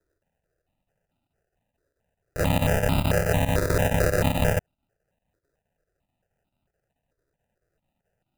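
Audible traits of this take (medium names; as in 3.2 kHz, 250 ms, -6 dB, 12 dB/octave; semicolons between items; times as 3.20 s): chopped level 4.6 Hz, depth 60%, duty 85%; aliases and images of a low sample rate 1.1 kHz, jitter 0%; notches that jump at a steady rate 4.5 Hz 810–1700 Hz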